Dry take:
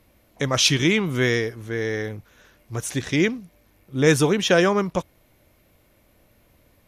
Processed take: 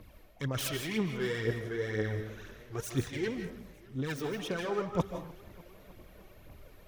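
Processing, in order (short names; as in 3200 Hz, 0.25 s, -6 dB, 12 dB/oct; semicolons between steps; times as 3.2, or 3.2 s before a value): self-modulated delay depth 0.11 ms; bell 9200 Hz -6 dB 1.5 oct; notch 2000 Hz, Q 20; reverse; compressor 12:1, threshold -33 dBFS, peak gain reduction 21 dB; reverse; phaser 2 Hz, delay 2.8 ms, feedback 63%; on a send at -6.5 dB: reverb RT60 0.40 s, pre-delay 0.115 s; on the sum: warbling echo 0.305 s, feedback 72%, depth 115 cents, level -22.5 dB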